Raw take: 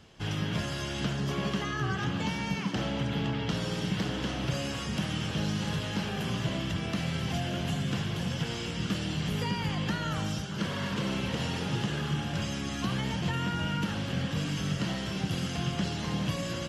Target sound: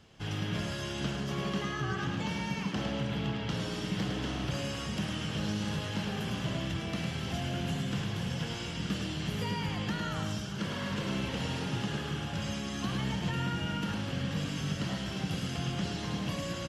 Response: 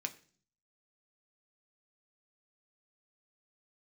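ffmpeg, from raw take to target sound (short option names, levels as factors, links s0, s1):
-af "aecho=1:1:106:0.531,volume=0.668"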